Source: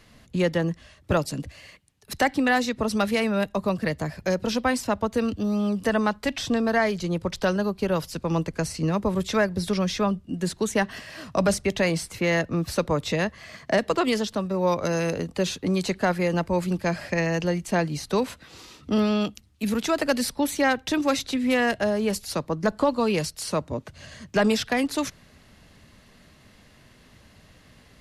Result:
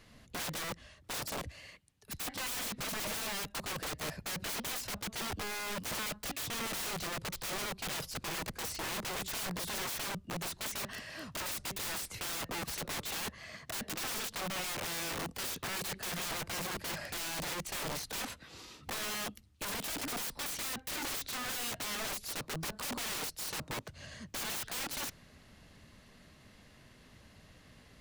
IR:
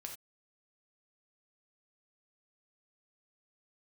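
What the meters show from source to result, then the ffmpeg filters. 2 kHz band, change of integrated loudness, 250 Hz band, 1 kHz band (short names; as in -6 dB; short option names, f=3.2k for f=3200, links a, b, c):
-10.5 dB, -12.0 dB, -21.5 dB, -13.0 dB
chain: -af "aeval=exprs='(mod(25.1*val(0)+1,2)-1)/25.1':c=same,volume=-5dB"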